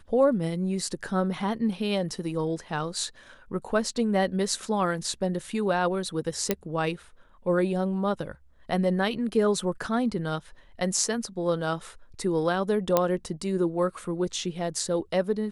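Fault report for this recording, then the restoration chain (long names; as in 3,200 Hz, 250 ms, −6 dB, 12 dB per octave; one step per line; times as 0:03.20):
0:06.51: click −8 dBFS
0:12.97: click −7 dBFS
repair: click removal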